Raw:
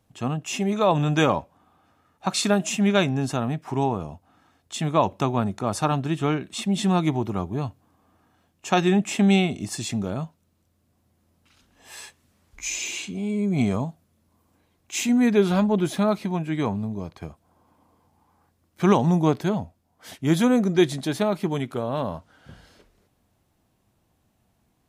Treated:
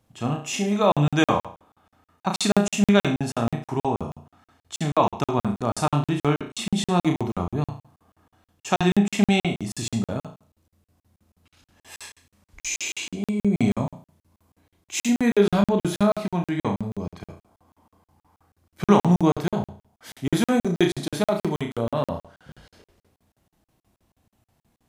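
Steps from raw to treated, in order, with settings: flutter echo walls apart 5.9 m, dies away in 0.42 s; crackling interface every 0.16 s, samples 2048, zero, from 0.92

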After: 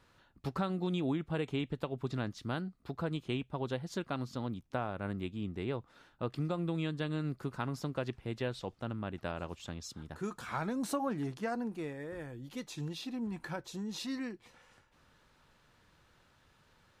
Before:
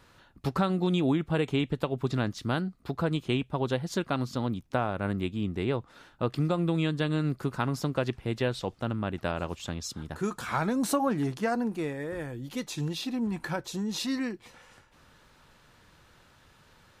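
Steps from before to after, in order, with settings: high shelf 8800 Hz -4 dB; gain -7.5 dB

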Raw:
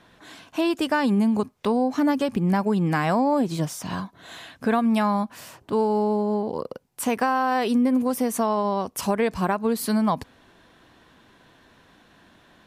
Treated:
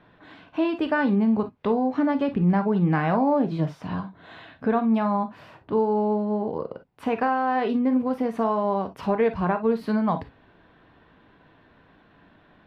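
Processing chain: air absorption 370 m; non-linear reverb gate 80 ms flat, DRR 7 dB; 3.8–5.97 dynamic EQ 2200 Hz, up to -4 dB, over -40 dBFS, Q 0.91

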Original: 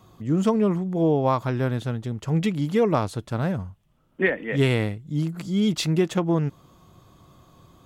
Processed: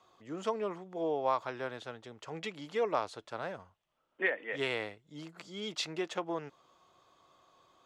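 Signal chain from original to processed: three-band isolator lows -22 dB, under 410 Hz, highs -18 dB, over 7400 Hz; gain -6.5 dB

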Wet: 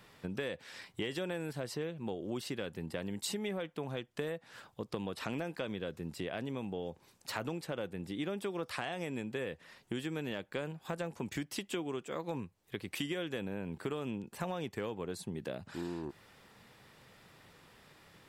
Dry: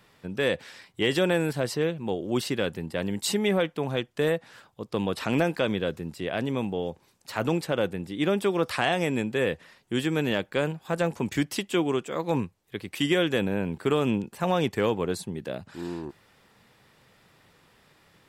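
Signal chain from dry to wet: compressor 5:1, threshold -36 dBFS, peak gain reduction 15.5 dB

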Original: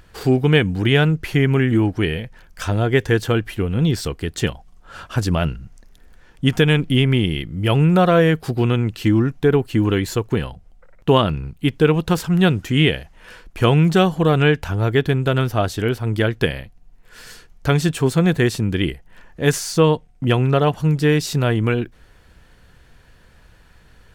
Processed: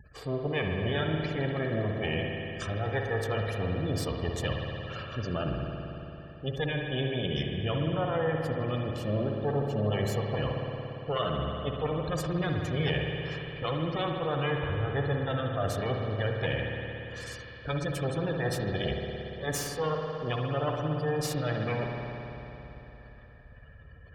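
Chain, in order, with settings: minimum comb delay 1.7 ms; spectral gate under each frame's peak -20 dB strong; reverse; compressor 4:1, threshold -31 dBFS, peak gain reduction 15.5 dB; reverse; HPF 48 Hz; spring tank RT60 3.5 s, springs 57 ms, chirp 25 ms, DRR 0.5 dB

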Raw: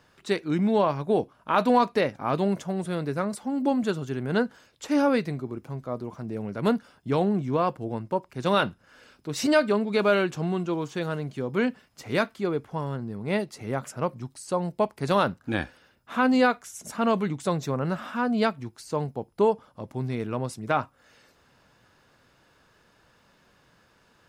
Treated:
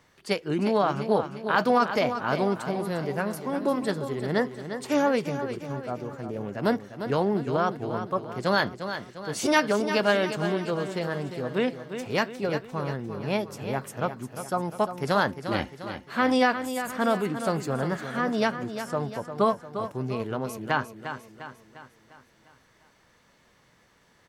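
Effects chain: formant shift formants +3 st; feedback echo 0.351 s, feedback 50%, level -9.5 dB; gain -1 dB

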